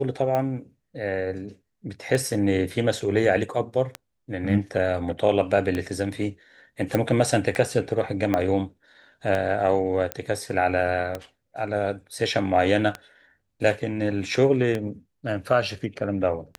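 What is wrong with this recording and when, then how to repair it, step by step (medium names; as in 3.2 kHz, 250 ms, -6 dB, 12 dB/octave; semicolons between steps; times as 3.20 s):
tick 33 1/3 rpm -14 dBFS
6.95 s: pop
8.34 s: pop -11 dBFS
10.12 s: pop -11 dBFS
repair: de-click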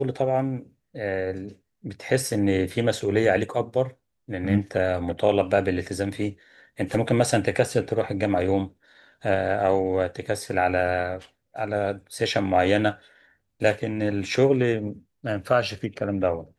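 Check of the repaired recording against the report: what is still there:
8.34 s: pop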